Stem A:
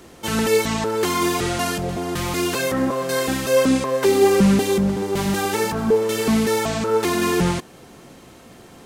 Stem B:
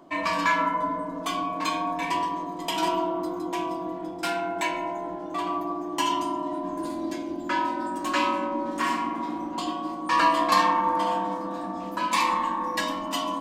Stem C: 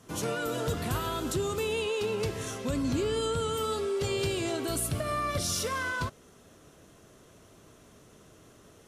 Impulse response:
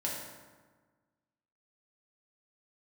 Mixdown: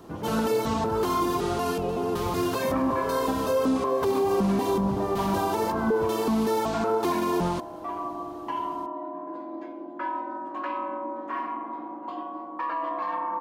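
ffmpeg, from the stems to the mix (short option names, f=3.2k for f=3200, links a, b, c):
-filter_complex "[0:a]equalizer=f=125:t=o:w=1:g=-6,equalizer=f=250:t=o:w=1:g=4,equalizer=f=1k:t=o:w=1:g=8,equalizer=f=2k:t=o:w=1:g=-9,equalizer=f=8k:t=o:w=1:g=-7,volume=-6dB[a];[1:a]highpass=380,adelay=2500,volume=-2dB[b];[2:a]alimiter=level_in=3dB:limit=-24dB:level=0:latency=1,volume=-3dB,volume=2.5dB[c];[b][c]amix=inputs=2:normalize=0,lowpass=1.3k,alimiter=limit=-22dB:level=0:latency=1,volume=0dB[d];[a][d]amix=inputs=2:normalize=0,alimiter=limit=-16.5dB:level=0:latency=1:release=89"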